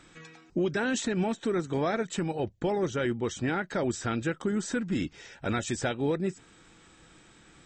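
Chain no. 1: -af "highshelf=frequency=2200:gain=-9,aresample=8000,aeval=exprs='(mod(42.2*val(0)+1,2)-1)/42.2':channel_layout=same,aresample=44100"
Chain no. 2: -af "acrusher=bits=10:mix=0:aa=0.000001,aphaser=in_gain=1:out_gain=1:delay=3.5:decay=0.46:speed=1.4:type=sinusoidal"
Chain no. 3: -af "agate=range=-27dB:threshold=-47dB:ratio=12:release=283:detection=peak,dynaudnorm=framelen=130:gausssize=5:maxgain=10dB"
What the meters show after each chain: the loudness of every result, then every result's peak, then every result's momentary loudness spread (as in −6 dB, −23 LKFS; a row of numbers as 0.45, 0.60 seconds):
−38.0, −29.0, −20.5 LKFS; −28.0, −13.5, −8.0 dBFS; 5, 6, 4 LU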